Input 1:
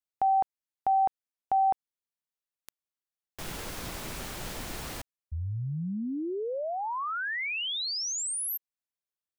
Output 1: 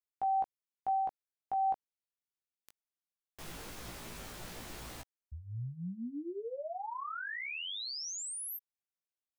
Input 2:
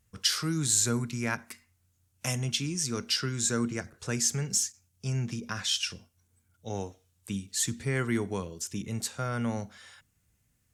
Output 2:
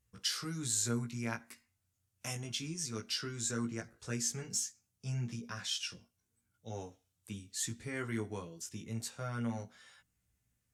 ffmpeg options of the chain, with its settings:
-af "flanger=delay=16.5:depth=2:speed=0.19,volume=-5dB"

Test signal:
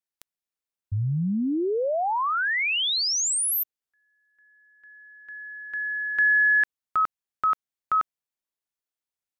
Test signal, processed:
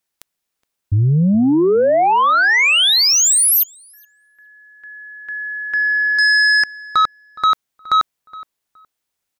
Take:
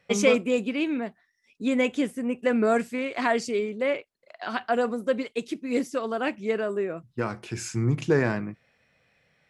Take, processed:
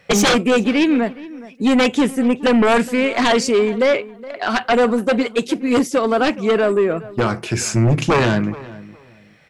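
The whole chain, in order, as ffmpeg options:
-filter_complex "[0:a]aeval=exprs='0.562*sin(PI/2*5.62*val(0)/0.562)':c=same,asplit=2[a][b];[b]adelay=418,lowpass=f=2k:p=1,volume=-18dB,asplit=2[c][d];[d]adelay=418,lowpass=f=2k:p=1,volume=0.22[e];[a][c][e]amix=inputs=3:normalize=0,volume=-5.5dB"

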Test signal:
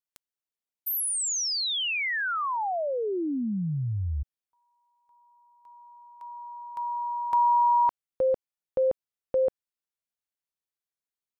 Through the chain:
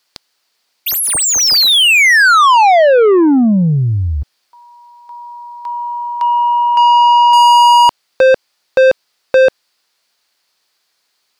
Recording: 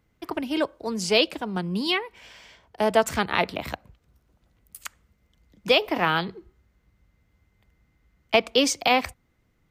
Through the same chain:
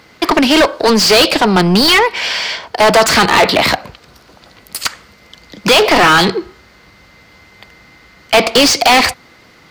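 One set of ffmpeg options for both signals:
-filter_complex "[0:a]equalizer=f=4.6k:t=o:w=0.48:g=9.5,asplit=2[a][b];[b]highpass=f=720:p=1,volume=35dB,asoftclip=type=tanh:threshold=-3.5dB[c];[a][c]amix=inputs=2:normalize=0,lowpass=f=3.7k:p=1,volume=-6dB,volume=3dB"

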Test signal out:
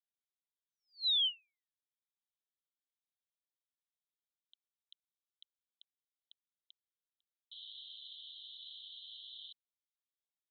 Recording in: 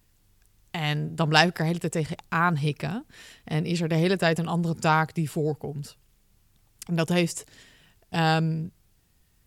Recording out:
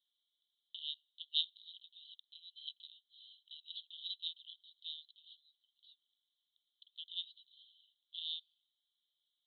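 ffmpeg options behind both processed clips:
-af "asuperpass=centerf=3500:order=12:qfactor=3.5,volume=-3.5dB"

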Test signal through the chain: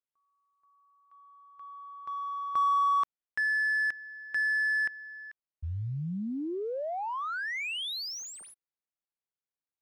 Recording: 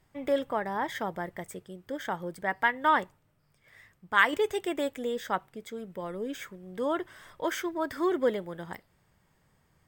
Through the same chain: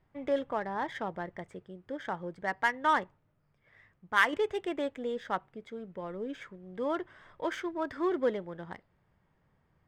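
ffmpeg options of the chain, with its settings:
-af "acrusher=bits=9:mode=log:mix=0:aa=0.000001,adynamicsmooth=sensitivity=4.5:basefreq=2.9k,volume=-2.5dB"

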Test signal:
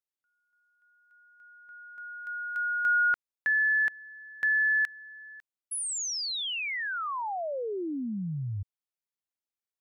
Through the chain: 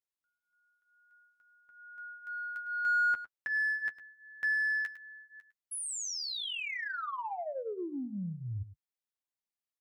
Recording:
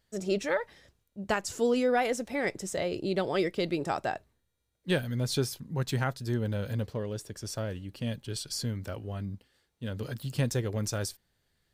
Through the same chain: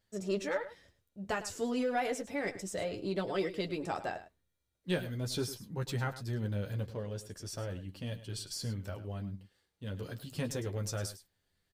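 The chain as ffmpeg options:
-filter_complex "[0:a]flanger=delay=9.8:depth=1.7:regen=-21:speed=0.33:shape=sinusoidal,asplit=2[a][b];[b]asoftclip=type=tanh:threshold=-30.5dB,volume=-8dB[c];[a][c]amix=inputs=2:normalize=0,aecho=1:1:105:0.2,volume=-4dB"

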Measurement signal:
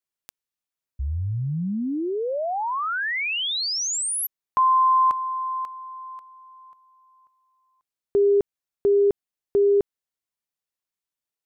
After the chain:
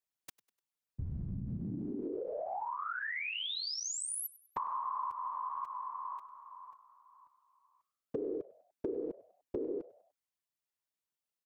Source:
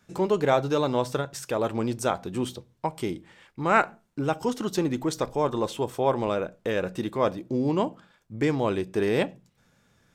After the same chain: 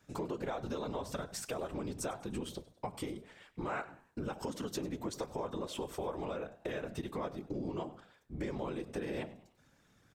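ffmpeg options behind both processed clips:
-filter_complex "[0:a]afftfilt=real='hypot(re,im)*cos(2*PI*random(0))':imag='hypot(re,im)*sin(2*PI*random(1))':win_size=512:overlap=0.75,acompressor=threshold=-39dB:ratio=5:attack=13:release=192:knee=1:detection=peak,asplit=2[a][b];[b]asplit=3[c][d][e];[c]adelay=99,afreqshift=87,volume=-20dB[f];[d]adelay=198,afreqshift=174,volume=-27.5dB[g];[e]adelay=297,afreqshift=261,volume=-35.1dB[h];[f][g][h]amix=inputs=3:normalize=0[i];[a][i]amix=inputs=2:normalize=0,volume=2dB"

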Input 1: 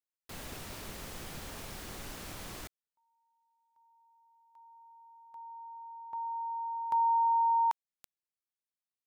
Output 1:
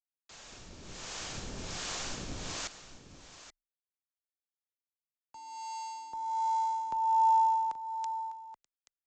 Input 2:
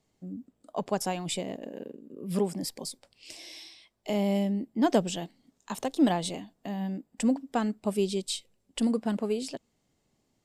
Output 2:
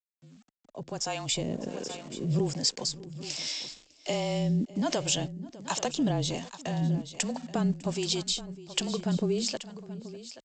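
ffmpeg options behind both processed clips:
-filter_complex "[0:a]acompressor=threshold=-31dB:ratio=8:attack=7.8:release=23:knee=6:detection=peak,aresample=16000,aeval=exprs='val(0)*gte(abs(val(0)),0.00266)':c=same,aresample=44100,afreqshift=-28,asplit=2[a][b];[b]aecho=0:1:602|829:0.119|0.188[c];[a][c]amix=inputs=2:normalize=0,dynaudnorm=f=430:g=5:m=14.5dB,highshelf=f=5.6k:g=12,acrossover=split=490[d][e];[d]aeval=exprs='val(0)*(1-0.7/2+0.7/2*cos(2*PI*1.3*n/s))':c=same[f];[e]aeval=exprs='val(0)*(1-0.7/2-0.7/2*cos(2*PI*1.3*n/s))':c=same[g];[f][g]amix=inputs=2:normalize=0,bandreject=f=2k:w=23,volume=-7dB"

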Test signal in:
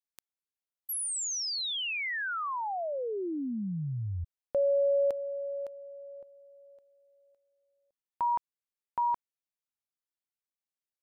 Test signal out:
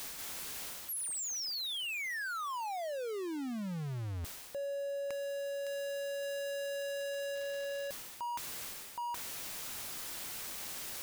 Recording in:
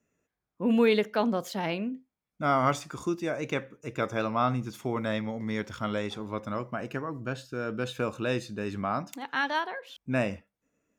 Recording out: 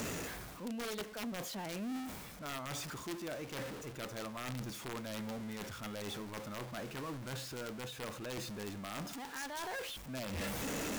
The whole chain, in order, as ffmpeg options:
-af "aeval=exprs='val(0)+0.5*0.0376*sgn(val(0))':c=same,areverse,acompressor=threshold=-34dB:ratio=5:attack=0.41:release=784:knee=1:detection=peak,areverse,aeval=exprs='(mod(35.5*val(0)+1,2)-1)/35.5':c=same,volume=-3.5dB"

